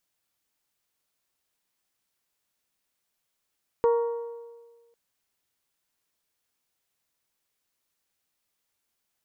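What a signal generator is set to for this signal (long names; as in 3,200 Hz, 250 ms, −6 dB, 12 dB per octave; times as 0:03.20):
struck metal bell, length 1.10 s, lowest mode 468 Hz, modes 5, decay 1.48 s, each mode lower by 9 dB, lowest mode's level −17 dB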